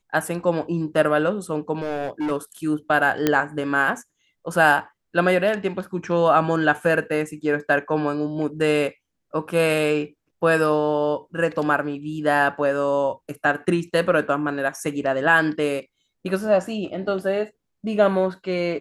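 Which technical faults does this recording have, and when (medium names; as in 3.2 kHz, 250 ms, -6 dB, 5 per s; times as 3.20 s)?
1.75–2.32 s: clipped -22 dBFS
3.27 s: pop -5 dBFS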